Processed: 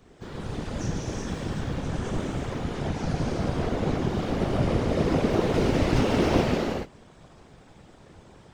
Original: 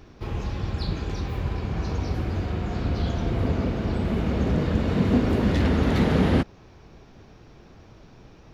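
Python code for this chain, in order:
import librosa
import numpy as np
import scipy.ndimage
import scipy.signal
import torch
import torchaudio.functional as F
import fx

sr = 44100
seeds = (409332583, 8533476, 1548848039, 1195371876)

y = fx.rev_gated(x, sr, seeds[0], gate_ms=450, shape='flat', drr_db=-5.5)
y = fx.formant_shift(y, sr, semitones=6)
y = fx.whisperise(y, sr, seeds[1])
y = y * 10.0 ** (-8.0 / 20.0)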